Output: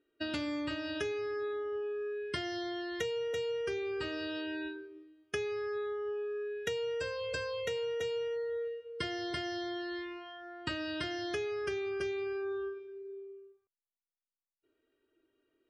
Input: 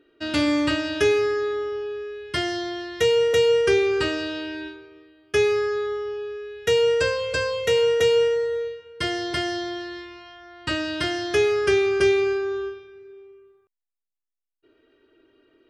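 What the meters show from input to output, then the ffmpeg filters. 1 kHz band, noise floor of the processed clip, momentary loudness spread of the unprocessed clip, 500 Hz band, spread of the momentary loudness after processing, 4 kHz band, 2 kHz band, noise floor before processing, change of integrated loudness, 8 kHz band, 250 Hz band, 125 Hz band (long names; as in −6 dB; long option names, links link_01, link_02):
−12.0 dB, below −85 dBFS, 14 LU, −14.0 dB, 8 LU, −13.0 dB, −12.5 dB, −85 dBFS, −14.0 dB, −15.0 dB, −11.5 dB, −13.0 dB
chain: -af "afftdn=noise_reduction=17:noise_floor=-37,acompressor=threshold=-35dB:ratio=6"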